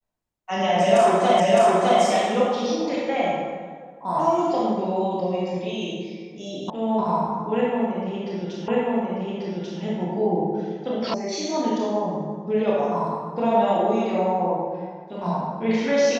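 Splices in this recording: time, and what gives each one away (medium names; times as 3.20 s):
1.40 s: repeat of the last 0.61 s
6.70 s: sound stops dead
8.68 s: repeat of the last 1.14 s
11.14 s: sound stops dead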